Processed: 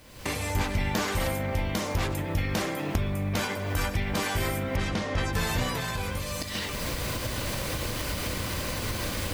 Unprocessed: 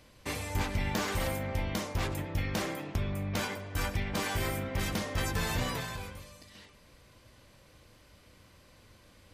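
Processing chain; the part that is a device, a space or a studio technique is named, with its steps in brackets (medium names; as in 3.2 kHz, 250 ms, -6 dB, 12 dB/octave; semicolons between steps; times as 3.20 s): cheap recorder with automatic gain (white noise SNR 33 dB; recorder AGC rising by 46 dB/s); 4.76–5.33 s: distance through air 81 m; trim +4 dB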